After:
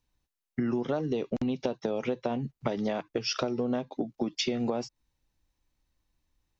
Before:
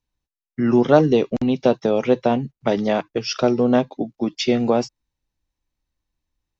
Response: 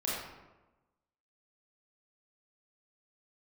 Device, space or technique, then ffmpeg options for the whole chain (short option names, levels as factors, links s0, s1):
serial compression, peaks first: -af "acompressor=threshold=0.0562:ratio=5,acompressor=threshold=0.0224:ratio=2,volume=1.41"